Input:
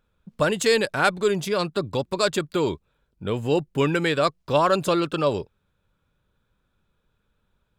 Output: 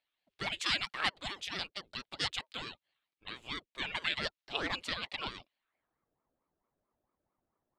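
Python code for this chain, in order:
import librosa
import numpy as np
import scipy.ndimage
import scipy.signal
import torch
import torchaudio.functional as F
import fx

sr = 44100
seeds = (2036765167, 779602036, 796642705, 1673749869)

y = fx.filter_sweep_bandpass(x, sr, from_hz=3000.0, to_hz=400.0, start_s=5.55, end_s=6.08, q=1.7)
y = fx.ring_lfo(y, sr, carrier_hz=460.0, swing_pct=75, hz=4.5)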